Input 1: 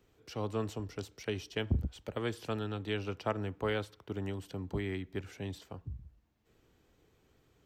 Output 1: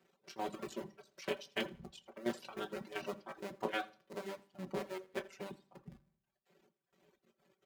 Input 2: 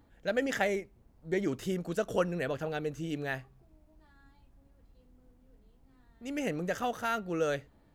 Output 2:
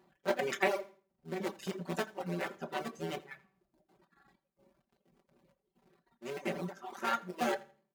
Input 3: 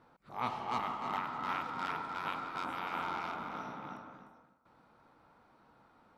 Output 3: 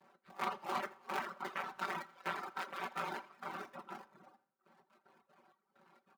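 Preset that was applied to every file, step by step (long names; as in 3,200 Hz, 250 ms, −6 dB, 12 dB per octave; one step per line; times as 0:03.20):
sub-harmonics by changed cycles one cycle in 2, muted
gate pattern "xx.x.xx.xxx...x" 193 BPM −12 dB
high-shelf EQ 4,800 Hz −5 dB
comb filter 5.2 ms, depth 96%
repeating echo 83 ms, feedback 23%, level −10.5 dB
rectangular room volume 200 cubic metres, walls furnished, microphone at 0.9 metres
reverb reduction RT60 0.91 s
Bessel high-pass filter 230 Hz, order 2
level −1 dB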